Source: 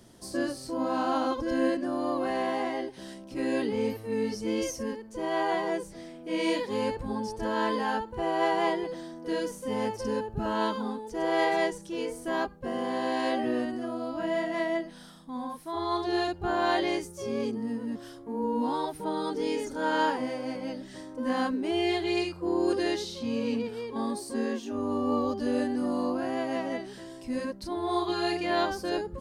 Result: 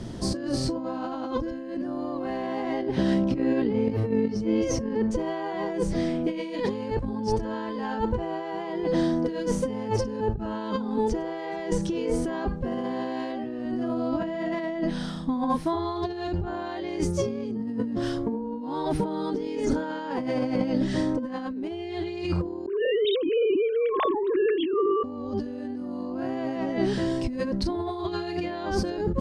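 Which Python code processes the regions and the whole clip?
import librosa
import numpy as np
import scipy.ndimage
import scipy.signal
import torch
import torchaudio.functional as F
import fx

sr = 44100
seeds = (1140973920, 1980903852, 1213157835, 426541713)

y = fx.chain(x, sr, fx.highpass(hz=42.0, slope=12),
    fx.high_shelf(hz=4400.0, db=-11.5),
    fx.over_compress(threshold_db=-33.0, ratio=-0.5), at=(2.82, 5.11))
y = fx.chain(y, sr, fx.sine_speech(),
    fx.over_compress(threshold_db=-37.0, ratio=-1.0), at=(22.66, 25.04))
y = scipy.signal.sosfilt(scipy.signal.butter(2, 6000.0, 'lowpass', fs=sr, output='sos'), y)
y = fx.low_shelf(y, sr, hz=320.0, db=11.0)
y = fx.over_compress(y, sr, threshold_db=-34.0, ratio=-1.0)
y = y * 10.0 ** (5.5 / 20.0)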